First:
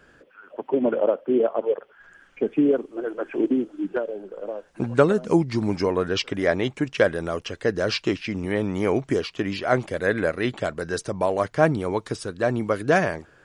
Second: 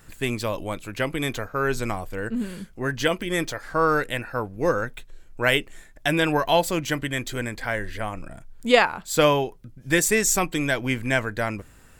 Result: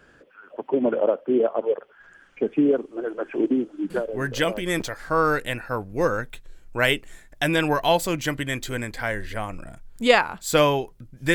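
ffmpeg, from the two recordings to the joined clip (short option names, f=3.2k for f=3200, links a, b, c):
-filter_complex "[0:a]apad=whole_dur=11.34,atrim=end=11.34,atrim=end=4.82,asetpts=PTS-STARTPTS[a];[1:a]atrim=start=2.54:end=9.98,asetpts=PTS-STARTPTS[b];[a][b]acrossfade=d=0.92:c1=log:c2=log"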